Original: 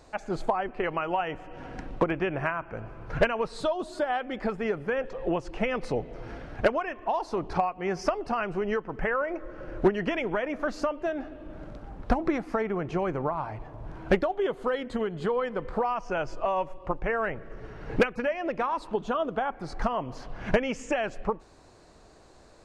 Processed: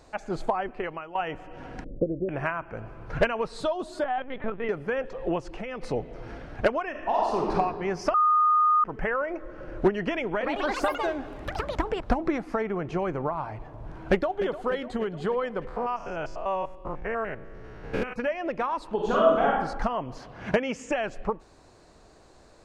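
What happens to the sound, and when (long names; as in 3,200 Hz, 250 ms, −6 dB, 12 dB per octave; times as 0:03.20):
0:00.67–0:01.15: fade out, to −16.5 dB
0:01.84–0:02.29: elliptic low-pass filter 580 Hz
0:04.04–0:04.69: linear-prediction vocoder at 8 kHz pitch kept
0:05.41–0:05.82: downward compressor 3 to 1, threshold −33 dBFS
0:06.90–0:07.52: thrown reverb, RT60 1.7 s, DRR −3 dB
0:08.14–0:08.84: beep over 1,230 Hz −17.5 dBFS
0:10.26–0:12.39: delay with pitch and tempo change per echo 148 ms, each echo +5 semitones, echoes 3
0:13.96–0:14.43: delay throw 300 ms, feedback 65%, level −12.5 dB
0:15.67–0:18.16: spectrum averaged block by block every 100 ms
0:18.95–0:19.60: thrown reverb, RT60 0.86 s, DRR −5.5 dB
0:20.18–0:20.91: high-pass filter 74 Hz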